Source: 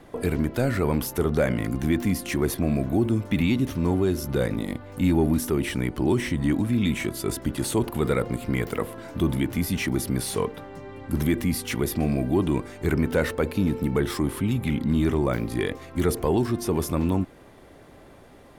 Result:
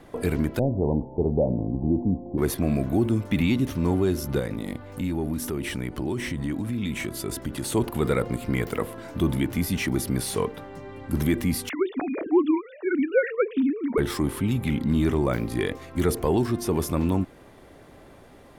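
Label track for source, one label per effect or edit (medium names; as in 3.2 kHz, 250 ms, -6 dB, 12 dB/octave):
0.590000	2.380000	steep low-pass 900 Hz 72 dB/octave
4.390000	7.720000	compression 3:1, threshold -26 dBFS
11.690000	13.980000	formants replaced by sine waves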